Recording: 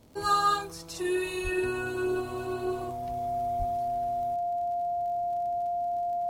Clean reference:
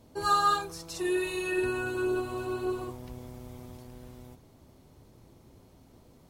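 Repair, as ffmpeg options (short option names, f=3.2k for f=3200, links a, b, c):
-filter_complex "[0:a]adeclick=t=4,bandreject=f=700:w=30,asplit=3[a][b][c];[a]afade=t=out:st=1.43:d=0.02[d];[b]highpass=f=140:w=0.5412,highpass=f=140:w=1.3066,afade=t=in:st=1.43:d=0.02,afade=t=out:st=1.55:d=0.02[e];[c]afade=t=in:st=1.55:d=0.02[f];[d][e][f]amix=inputs=3:normalize=0,asplit=3[g][h][i];[g]afade=t=out:st=3.58:d=0.02[j];[h]highpass=f=140:w=0.5412,highpass=f=140:w=1.3066,afade=t=in:st=3.58:d=0.02,afade=t=out:st=3.7:d=0.02[k];[i]afade=t=in:st=3.7:d=0.02[l];[j][k][l]amix=inputs=3:normalize=0"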